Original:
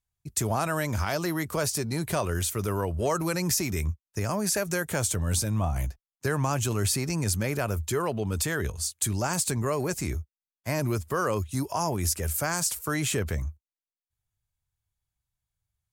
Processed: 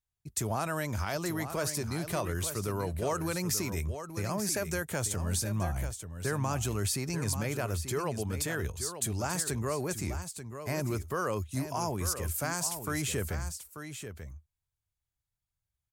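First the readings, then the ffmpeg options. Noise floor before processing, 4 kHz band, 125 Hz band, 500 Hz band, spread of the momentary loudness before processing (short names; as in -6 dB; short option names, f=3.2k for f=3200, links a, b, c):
under -85 dBFS, -4.5 dB, -4.5 dB, -4.5 dB, 6 LU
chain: -af "aecho=1:1:887:0.335,volume=-5dB"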